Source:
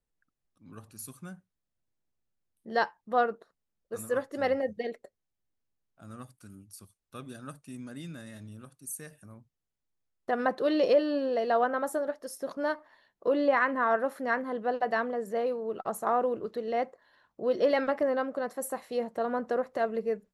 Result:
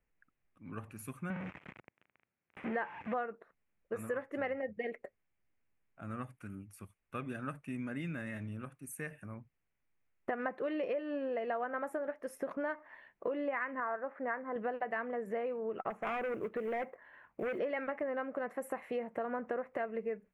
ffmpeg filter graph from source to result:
-filter_complex "[0:a]asettb=1/sr,asplit=3[a][b][c];[a]atrim=end=1.304[d];[b]atrim=start=1.3:end=3.14,asetpts=PTS-STARTPTS,afade=t=in:d=0.004:c=qsin,afade=t=out:st=1.836:d=0.004:c=qsin,aeval=exprs='val(0)+0.5*0.015*sgn(val(0))':c=same,highpass=110,lowpass=2.9k[e];[c]atrim=start=3.136[f];[d][e]acrossfade=d=0.004:c1=hsin:c2=qsin[g];[g][f]acrossfade=d=0.004:c1=qsin:c2=hsin,asettb=1/sr,asplit=3[h][i][j];[h]atrim=end=13.804[k];[i]atrim=start=13.8:end=14.56,asetpts=PTS-STARTPTS,afade=t=in:d=0.004:c=qsin,afade=t=out:st=0.756:d=0.004:c=qsin,lowpass=1.4k,lowshelf=f=350:g=-9.5[l];[j]atrim=start=14.556[m];[k][l]acrossfade=d=0.004:c1=hsin:c2=qsin[n];[n][m]acrossfade=d=0.004:c1=qsin:c2=hsin,asettb=1/sr,asplit=3[o][p][q];[o]atrim=end=15.904[r];[p]atrim=start=15.9:end=17.59,asetpts=PTS-STARTPTS,afade=t=in:d=0.004:c=qsin,afade=t=out:st=1.686:d=0.004:c=qsin,lowpass=3.2k,asoftclip=type=hard:threshold=-29.5dB,acrusher=bits=6:mode=log:mix=0:aa=0.000001[s];[q]atrim=start=17.586[t];[r][s]acrossfade=d=0.004:c1=hsin:c2=qsin[u];[u][t]acrossfade=d=0.004:c1=qsin:c2=hsin,highshelf=f=3.2k:t=q:w=3:g=-11.5,acompressor=threshold=-38dB:ratio=6,volume=3.5dB"

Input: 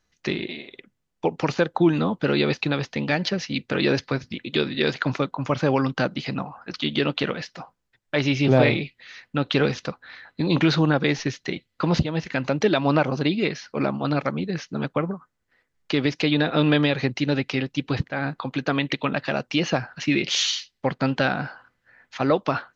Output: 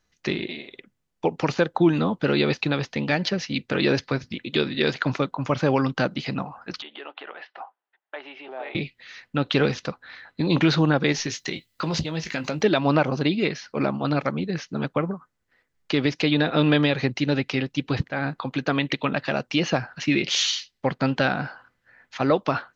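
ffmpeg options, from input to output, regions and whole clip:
-filter_complex "[0:a]asettb=1/sr,asplit=3[a][b][c];[a]atrim=end=6.824[d];[b]atrim=start=6.82:end=8.75,asetpts=PTS-STARTPTS,afade=t=in:d=0.004:c=qsin,afade=t=out:st=1.926:d=0.004:c=qsin,acompressor=threshold=-32dB:ratio=2.5:attack=3.2:release=140:knee=1:detection=peak,highpass=f=430:w=0.5412,highpass=f=430:w=1.3066,equalizer=f=500:t=q:w=4:g=-8,equalizer=f=800:t=q:w=4:g=6,equalizer=f=2.3k:t=q:w=4:g=-5,lowpass=f=2.9k:w=0.5412,lowpass=f=2.9k:w=1.3066[e];[c]atrim=start=8.746[f];[d][e]acrossfade=d=0.004:c1=hsin:c2=qsin[g];[g][f]acrossfade=d=0.004:c1=qsin:c2=hsin,asettb=1/sr,asplit=3[h][i][j];[h]atrim=end=11.124[k];[i]atrim=start=11.12:end=12.61,asetpts=PTS-STARTPTS,afade=t=in:d=0.004:c=qsin,afade=t=out:st=1.486:d=0.004:c=qsin,aemphasis=mode=production:type=75kf,asplit=2[l][m];[m]adelay=19,volume=-10dB[n];[l][n]amix=inputs=2:normalize=0,atrim=end_sample=65709,acompressor=threshold=-26dB:ratio=2:attack=3.2:release=140:knee=1:detection=peak[o];[j]atrim=start=12.606[p];[k][o]acrossfade=d=0.004:c1=hsin:c2=qsin[q];[q][p]acrossfade=d=0.004:c1=qsin:c2=hsin"

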